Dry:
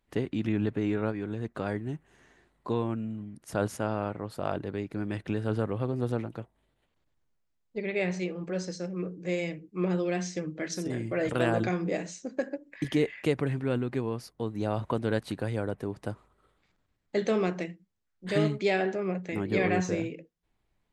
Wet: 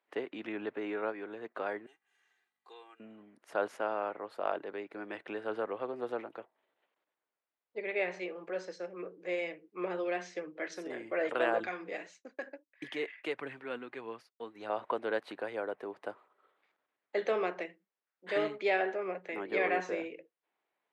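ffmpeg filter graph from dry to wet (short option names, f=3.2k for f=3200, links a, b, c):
-filter_complex "[0:a]asettb=1/sr,asplit=3[a][b][c];[a]atrim=end=1.864[d];[b]atrim=start=1.86:end=3,asetpts=PTS-STARTPTS,afade=t=in:d=0.004:c=qsin,afade=t=out:st=1.136:d=0.004:c=qsin,aderivative,aecho=1:1:2.5:0.79,atrim=end_sample=50274,aeval=exprs='val(0)+0.000141*(sin(2*PI*50*n/s)+sin(2*PI*2*50*n/s)/2+sin(2*PI*3*50*n/s)/3+sin(2*PI*4*50*n/s)/4+sin(2*PI*5*50*n/s)/5)':c=same[e];[c]atrim=start=2.996[f];[d][e]acrossfade=d=0.004:c1=hsin:c2=qsin[g];[g][f]acrossfade=d=0.004:c1=qsin:c2=hsin,asettb=1/sr,asplit=3[h][i][j];[h]atrim=end=11.604[k];[i]atrim=start=11.6:end=14.7,asetpts=PTS-STARTPTS,afade=t=in:d=0.004:c=qsin,afade=t=out:st=3.096:d=0.004:c=qsin,agate=range=-33dB:threshold=-40dB:ratio=3:release=100:detection=peak,equalizer=f=550:w=0.58:g=-7.5,aphaser=in_gain=1:out_gain=1:delay=4.6:decay=0.33:speed=1.6:type=triangular[l];[j]atrim=start=14.696[m];[k][l]acrossfade=d=0.004:c1=hsin:c2=qsin[n];[n][m]acrossfade=d=0.004:c1=qsin:c2=hsin,highpass=200,acrossover=split=380 3300:gain=0.0794 1 0.141[o][p][q];[o][p][q]amix=inputs=3:normalize=0"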